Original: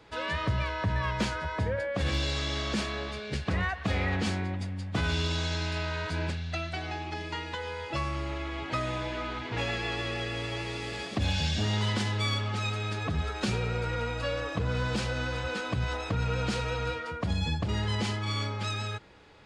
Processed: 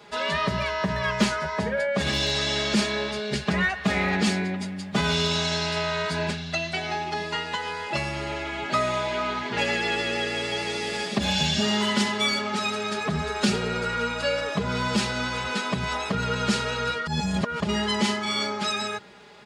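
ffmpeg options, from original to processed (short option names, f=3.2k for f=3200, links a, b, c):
-filter_complex "[0:a]asplit=3[a][b][c];[a]atrim=end=17.072[d];[b]atrim=start=17.068:end=17.602,asetpts=PTS-STARTPTS,areverse[e];[c]atrim=start=17.598[f];[d][e]acrossfade=d=0.004:c1=hsin:c2=hsin[g];[g][f]acrossfade=d=0.004:c1=hsin:c2=hsin,highpass=110,highshelf=f=4.9k:g=4.5,aecho=1:1:4.9:0.94,volume=4dB"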